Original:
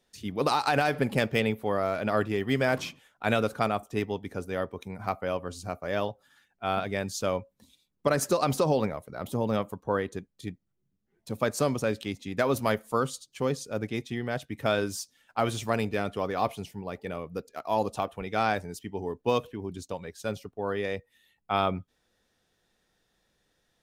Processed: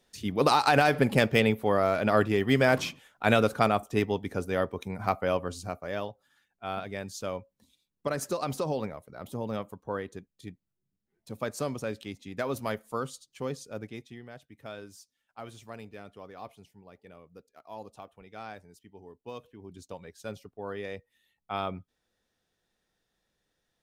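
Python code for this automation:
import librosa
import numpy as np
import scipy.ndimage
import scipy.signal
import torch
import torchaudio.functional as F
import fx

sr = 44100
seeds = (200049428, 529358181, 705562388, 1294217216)

y = fx.gain(x, sr, db=fx.line((5.4, 3.0), (6.09, -6.0), (13.72, -6.0), (14.38, -16.0), (19.34, -16.0), (19.89, -6.5)))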